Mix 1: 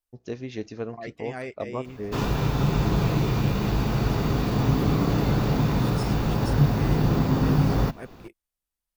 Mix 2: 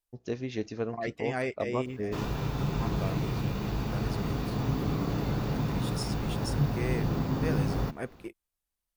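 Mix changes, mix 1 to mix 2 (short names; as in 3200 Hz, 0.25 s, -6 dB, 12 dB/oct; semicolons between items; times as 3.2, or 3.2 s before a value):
second voice +3.5 dB; background -7.5 dB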